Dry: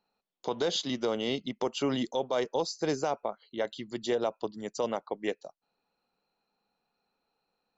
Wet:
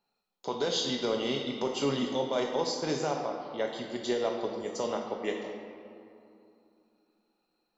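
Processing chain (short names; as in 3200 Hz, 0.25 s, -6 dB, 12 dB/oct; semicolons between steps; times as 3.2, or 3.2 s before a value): on a send: high shelf 3300 Hz +11.5 dB + reverb RT60 2.7 s, pre-delay 5 ms, DRR 0.5 dB; on the sum: gain -2 dB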